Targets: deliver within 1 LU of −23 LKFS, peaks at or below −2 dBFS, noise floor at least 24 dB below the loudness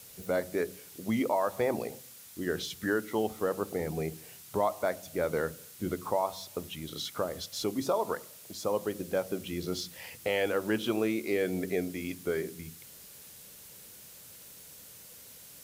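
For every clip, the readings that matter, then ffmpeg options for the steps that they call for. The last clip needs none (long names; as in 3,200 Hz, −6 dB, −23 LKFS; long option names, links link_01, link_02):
background noise floor −51 dBFS; target noise floor −57 dBFS; integrated loudness −33.0 LKFS; sample peak −16.5 dBFS; target loudness −23.0 LKFS
→ -af "afftdn=noise_reduction=6:noise_floor=-51"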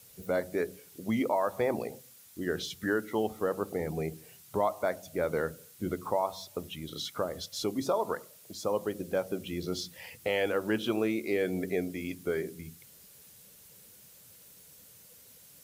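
background noise floor −56 dBFS; target noise floor −57 dBFS
→ -af "afftdn=noise_reduction=6:noise_floor=-56"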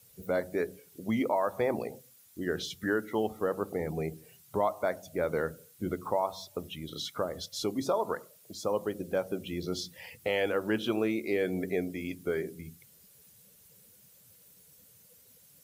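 background noise floor −59 dBFS; integrated loudness −33.0 LKFS; sample peak −16.5 dBFS; target loudness −23.0 LKFS
→ -af "volume=10dB"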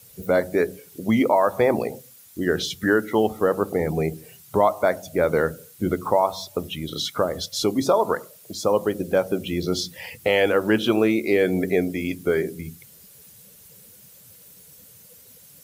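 integrated loudness −23.0 LKFS; sample peak −6.5 dBFS; background noise floor −49 dBFS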